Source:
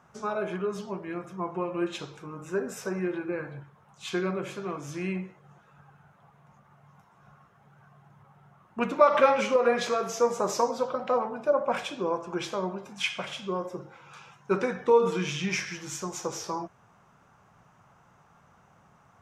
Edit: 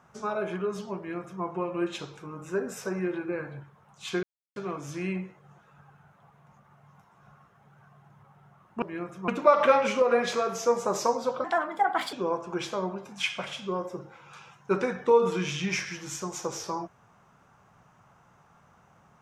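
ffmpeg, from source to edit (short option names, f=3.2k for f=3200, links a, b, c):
-filter_complex "[0:a]asplit=7[a][b][c][d][e][f][g];[a]atrim=end=4.23,asetpts=PTS-STARTPTS,afade=t=out:st=4.226:d=0.004:c=hsin[h];[b]atrim=start=4.23:end=4.56,asetpts=PTS-STARTPTS,volume=0[i];[c]atrim=start=4.56:end=8.822,asetpts=PTS-STARTPTS,afade=t=in:d=0.004:c=hsin[j];[d]atrim=start=0.968:end=1.432[k];[e]atrim=start=8.818:end=10.984[l];[f]atrim=start=10.98:end=11.93,asetpts=PTS-STARTPTS,asetrate=60858,aresample=44100[m];[g]atrim=start=11.926[n];[h][i][j]concat=n=3:v=0:a=1[o];[o][k]acrossfade=d=0.004:c1=hsin:c2=hsin[p];[p][l]acrossfade=d=0.004:c1=hsin:c2=hsin[q];[q][m]acrossfade=d=0.004:c1=hsin:c2=hsin[r];[r][n]acrossfade=d=0.004:c1=hsin:c2=hsin"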